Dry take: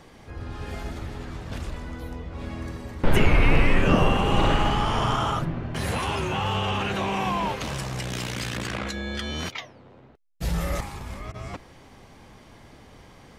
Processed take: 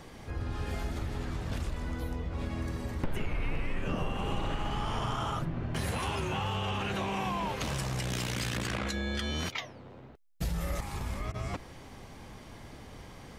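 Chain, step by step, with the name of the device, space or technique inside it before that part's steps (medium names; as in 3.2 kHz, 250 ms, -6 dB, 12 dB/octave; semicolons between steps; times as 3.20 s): ASMR close-microphone chain (bass shelf 160 Hz +3 dB; compression 5:1, threshold -30 dBFS, peak gain reduction 18.5 dB; treble shelf 7.8 kHz +4 dB)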